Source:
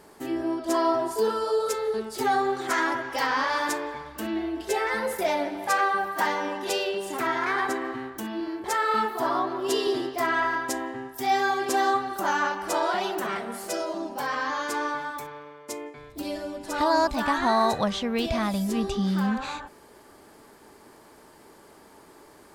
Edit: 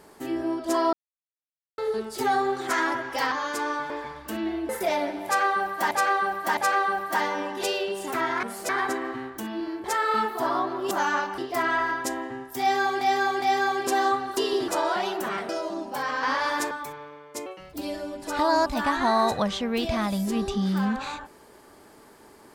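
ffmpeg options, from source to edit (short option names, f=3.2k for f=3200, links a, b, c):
-filter_complex "[0:a]asplit=21[a][b][c][d][e][f][g][h][i][j][k][l][m][n][o][p][q][r][s][t][u];[a]atrim=end=0.93,asetpts=PTS-STARTPTS,afade=t=out:st=0.926:d=0.004:c=hsin[v];[b]atrim=start=0.93:end=1.78,asetpts=PTS-STARTPTS,volume=0[w];[c]atrim=start=1.78:end=3.322,asetpts=PTS-STARTPTS,afade=t=in:d=0.004:c=hsin[x];[d]atrim=start=14.468:end=15.052[y];[e]atrim=start=3.798:end=4.592[z];[f]atrim=start=5.068:end=6.292[aa];[g]atrim=start=5.628:end=6.292[ab];[h]atrim=start=5.628:end=7.492[ac];[i]atrim=start=13.468:end=13.732[ad];[j]atrim=start=7.488:end=9.712[ae];[k]atrim=start=12.188:end=12.662[af];[l]atrim=start=10.018:end=11.652[ag];[m]atrim=start=11.238:end=11.652[ah];[n]atrim=start=11.238:end=12.192[ai];[o]atrim=start=9.708:end=10.022[aj];[p]atrim=start=12.658:end=13.472[ak];[q]atrim=start=13.728:end=14.472[al];[r]atrim=start=3.318:end=3.802[am];[s]atrim=start=15.048:end=15.804[an];[t]atrim=start=15.8:end=16.15,asetpts=PTS-STARTPTS,asetrate=56007,aresample=44100[ao];[u]atrim=start=16.146[ap];[v][w][x]concat=n=3:v=0:a=1[aq];[aq][y]acrossfade=d=0.004:c1=hsin:c2=hsin[ar];[ar][z]acrossfade=d=0.004:c1=hsin:c2=hsin[as];[as][aa]acrossfade=d=0.004:c1=hsin:c2=hsin[at];[at][ab]acrossfade=d=0.004:c1=hsin:c2=hsin[au];[au][ac]acrossfade=d=0.004:c1=hsin:c2=hsin[av];[av][ad]acrossfade=d=0.004:c1=hsin:c2=hsin[aw];[aw][ae]acrossfade=d=0.004:c1=hsin:c2=hsin[ax];[ax][af]acrossfade=d=0.004:c1=hsin:c2=hsin[ay];[ay][ag]acrossfade=d=0.004:c1=hsin:c2=hsin[az];[az][ah]acrossfade=d=0.004:c1=hsin:c2=hsin[ba];[ba][ai]acrossfade=d=0.004:c1=hsin:c2=hsin[bb];[bb][aj]acrossfade=d=0.004:c1=hsin:c2=hsin[bc];[bc][ak]acrossfade=d=0.004:c1=hsin:c2=hsin[bd];[bd][al]acrossfade=d=0.004:c1=hsin:c2=hsin[be];[be][am]acrossfade=d=0.004:c1=hsin:c2=hsin[bf];[bf][an]acrossfade=d=0.004:c1=hsin:c2=hsin[bg];[bg][ao]acrossfade=d=0.004:c1=hsin:c2=hsin[bh];[bh][ap]acrossfade=d=0.004:c1=hsin:c2=hsin"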